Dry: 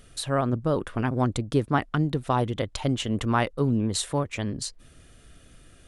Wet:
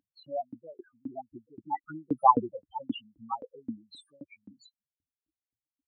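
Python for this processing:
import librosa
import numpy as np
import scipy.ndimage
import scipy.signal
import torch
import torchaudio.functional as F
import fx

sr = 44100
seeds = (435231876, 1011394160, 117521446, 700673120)

y = fx.doppler_pass(x, sr, speed_mps=8, closest_m=1.9, pass_at_s=2.4)
y = fx.spec_topn(y, sr, count=4)
y = fx.filter_lfo_highpass(y, sr, shape='saw_up', hz=3.8, low_hz=270.0, high_hz=1700.0, q=5.2)
y = y * librosa.db_to_amplitude(4.5)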